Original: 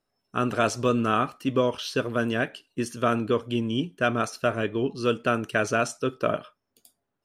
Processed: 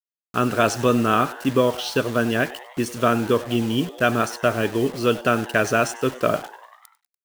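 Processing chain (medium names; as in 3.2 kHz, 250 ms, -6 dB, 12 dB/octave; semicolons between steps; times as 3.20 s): bit crusher 7-bit; frequency-shifting echo 97 ms, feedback 64%, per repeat +120 Hz, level -18.5 dB; trim +4.5 dB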